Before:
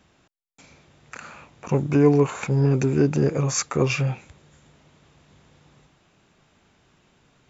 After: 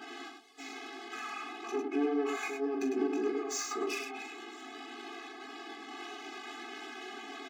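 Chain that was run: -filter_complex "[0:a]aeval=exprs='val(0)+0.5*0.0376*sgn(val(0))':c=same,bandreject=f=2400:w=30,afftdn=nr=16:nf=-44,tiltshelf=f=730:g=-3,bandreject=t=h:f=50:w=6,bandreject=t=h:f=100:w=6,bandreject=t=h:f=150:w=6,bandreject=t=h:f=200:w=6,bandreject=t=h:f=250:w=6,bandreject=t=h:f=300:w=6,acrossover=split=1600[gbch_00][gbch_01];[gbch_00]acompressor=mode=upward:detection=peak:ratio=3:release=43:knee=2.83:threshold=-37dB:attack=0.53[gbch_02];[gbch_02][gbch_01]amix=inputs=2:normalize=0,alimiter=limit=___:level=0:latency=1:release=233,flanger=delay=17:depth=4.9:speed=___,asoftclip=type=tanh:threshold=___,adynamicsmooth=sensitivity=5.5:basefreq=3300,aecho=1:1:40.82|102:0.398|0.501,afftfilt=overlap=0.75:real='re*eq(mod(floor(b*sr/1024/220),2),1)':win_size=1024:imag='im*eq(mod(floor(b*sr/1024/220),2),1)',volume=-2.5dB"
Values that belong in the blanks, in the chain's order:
-11dB, 1.8, -23dB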